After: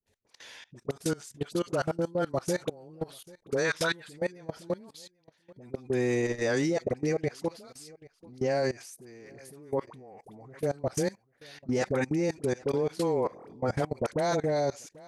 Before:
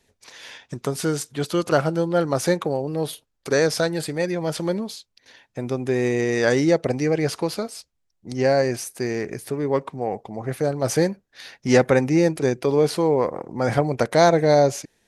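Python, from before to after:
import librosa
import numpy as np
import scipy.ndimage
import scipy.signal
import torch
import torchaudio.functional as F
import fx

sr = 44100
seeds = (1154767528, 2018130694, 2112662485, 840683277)

p1 = fx.dispersion(x, sr, late='highs', ms=64.0, hz=840.0)
p2 = p1 + fx.echo_single(p1, sr, ms=789, db=-22.0, dry=0)
p3 = fx.spec_box(p2, sr, start_s=3.65, length_s=0.44, low_hz=880.0, high_hz=4000.0, gain_db=10)
p4 = fx.level_steps(p3, sr, step_db=22)
p5 = fx.dynamic_eq(p4, sr, hz=7100.0, q=2.6, threshold_db=-53.0, ratio=4.0, max_db=4)
y = F.gain(torch.from_numpy(p5), -4.5).numpy()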